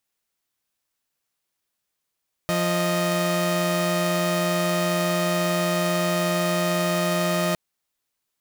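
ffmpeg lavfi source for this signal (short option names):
-f lavfi -i "aevalsrc='0.0891*((2*mod(174.61*t,1)-1)+(2*mod(622.25*t,1)-1))':d=5.06:s=44100"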